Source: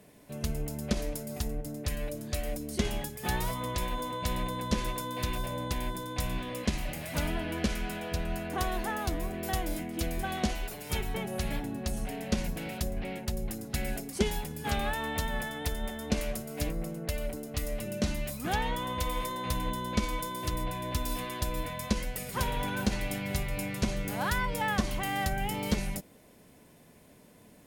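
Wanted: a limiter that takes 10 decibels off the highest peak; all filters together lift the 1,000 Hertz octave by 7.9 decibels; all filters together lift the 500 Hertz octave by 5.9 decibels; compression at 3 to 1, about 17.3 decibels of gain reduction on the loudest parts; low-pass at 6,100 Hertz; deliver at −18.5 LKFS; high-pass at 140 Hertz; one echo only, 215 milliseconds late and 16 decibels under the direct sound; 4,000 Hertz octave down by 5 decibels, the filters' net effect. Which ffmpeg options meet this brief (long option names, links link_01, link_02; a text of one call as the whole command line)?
ffmpeg -i in.wav -af "highpass=140,lowpass=6100,equalizer=frequency=500:width_type=o:gain=5,equalizer=frequency=1000:width_type=o:gain=8,equalizer=frequency=4000:width_type=o:gain=-6.5,acompressor=threshold=-47dB:ratio=3,alimiter=level_in=14dB:limit=-24dB:level=0:latency=1,volume=-14dB,aecho=1:1:215:0.158,volume=28.5dB" out.wav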